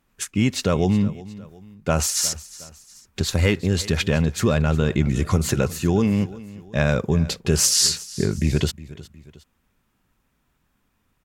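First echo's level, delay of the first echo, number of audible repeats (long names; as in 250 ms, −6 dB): −18.5 dB, 362 ms, 2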